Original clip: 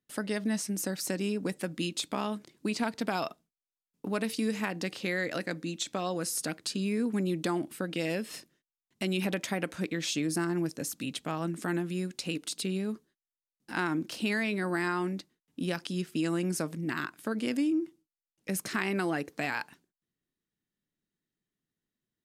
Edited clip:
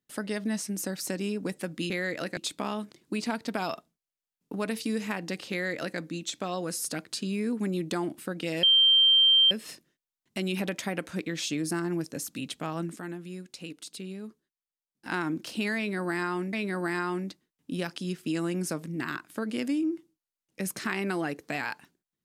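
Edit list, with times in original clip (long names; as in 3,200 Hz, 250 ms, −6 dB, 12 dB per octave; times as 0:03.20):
0:05.04–0:05.51: duplicate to 0:01.90
0:08.16: insert tone 3,150 Hz −16.5 dBFS 0.88 s
0:11.61–0:13.71: clip gain −7 dB
0:14.42–0:15.18: repeat, 2 plays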